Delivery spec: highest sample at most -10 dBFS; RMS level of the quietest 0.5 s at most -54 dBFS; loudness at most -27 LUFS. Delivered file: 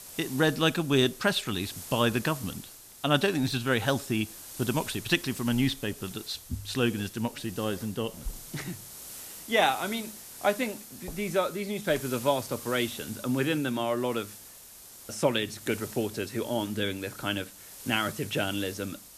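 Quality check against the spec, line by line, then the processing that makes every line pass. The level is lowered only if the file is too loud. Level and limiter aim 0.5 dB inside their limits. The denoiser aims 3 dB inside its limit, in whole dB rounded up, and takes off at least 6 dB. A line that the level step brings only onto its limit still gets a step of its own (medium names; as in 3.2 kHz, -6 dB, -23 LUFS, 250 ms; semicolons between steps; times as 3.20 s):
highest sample -8.0 dBFS: fail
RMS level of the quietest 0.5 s -49 dBFS: fail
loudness -29.5 LUFS: pass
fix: noise reduction 8 dB, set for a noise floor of -49 dBFS; peak limiter -10.5 dBFS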